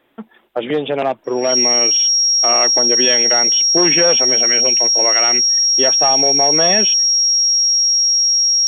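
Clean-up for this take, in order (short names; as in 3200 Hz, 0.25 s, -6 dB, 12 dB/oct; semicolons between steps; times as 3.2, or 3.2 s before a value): notch 5600 Hz, Q 30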